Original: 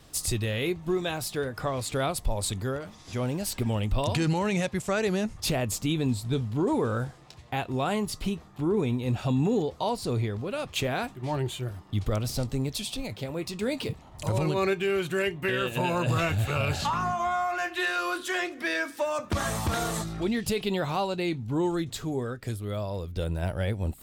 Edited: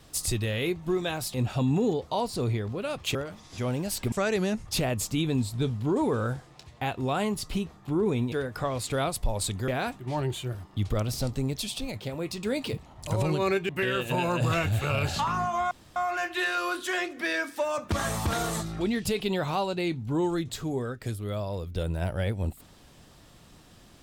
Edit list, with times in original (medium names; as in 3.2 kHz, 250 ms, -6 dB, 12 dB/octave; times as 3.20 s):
1.34–2.70 s: swap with 9.03–10.84 s
3.67–4.83 s: delete
14.85–15.35 s: delete
17.37 s: insert room tone 0.25 s